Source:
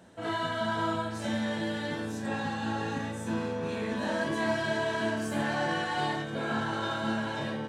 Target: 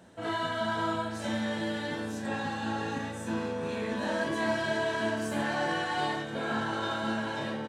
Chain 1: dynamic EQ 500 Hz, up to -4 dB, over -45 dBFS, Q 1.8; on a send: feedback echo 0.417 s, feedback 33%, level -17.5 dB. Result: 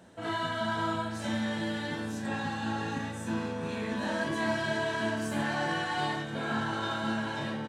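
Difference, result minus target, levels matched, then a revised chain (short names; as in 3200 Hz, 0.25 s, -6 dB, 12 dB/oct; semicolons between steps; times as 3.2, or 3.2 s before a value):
125 Hz band +3.0 dB
dynamic EQ 140 Hz, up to -4 dB, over -45 dBFS, Q 1.8; on a send: feedback echo 0.417 s, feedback 33%, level -17.5 dB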